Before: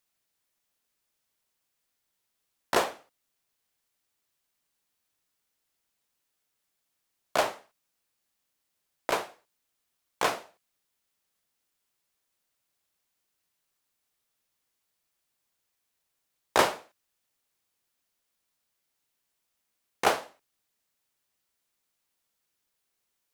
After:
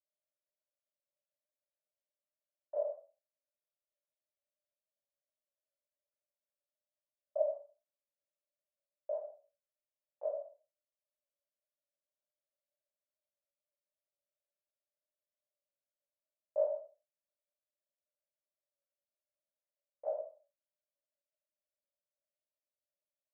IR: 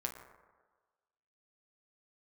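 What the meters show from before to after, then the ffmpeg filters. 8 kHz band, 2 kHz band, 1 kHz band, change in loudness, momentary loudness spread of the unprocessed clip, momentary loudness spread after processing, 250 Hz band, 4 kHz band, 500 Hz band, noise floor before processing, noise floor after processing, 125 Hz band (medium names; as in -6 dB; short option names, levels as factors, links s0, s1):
under -35 dB, under -40 dB, -23.5 dB, -10.0 dB, 14 LU, 16 LU, under -35 dB, under -40 dB, -4.0 dB, -80 dBFS, under -85 dBFS, under -40 dB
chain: -filter_complex "[0:a]flanger=delay=16.5:depth=5.1:speed=1.3,asuperpass=centerf=590:order=4:qfactor=7.2[s0];[1:a]atrim=start_sample=2205,atrim=end_sample=6174[s1];[s0][s1]afir=irnorm=-1:irlink=0,volume=1.33"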